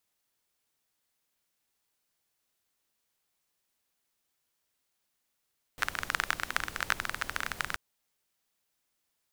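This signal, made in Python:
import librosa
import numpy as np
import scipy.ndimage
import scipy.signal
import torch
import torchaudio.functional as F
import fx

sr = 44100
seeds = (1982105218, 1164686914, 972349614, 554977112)

y = fx.rain(sr, seeds[0], length_s=1.98, drops_per_s=20.0, hz=1500.0, bed_db=-10.5)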